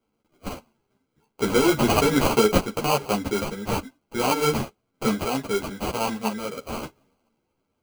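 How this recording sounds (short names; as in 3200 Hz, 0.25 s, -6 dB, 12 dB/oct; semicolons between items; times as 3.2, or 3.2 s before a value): random-step tremolo; aliases and images of a low sample rate 1800 Hz, jitter 0%; a shimmering, thickened sound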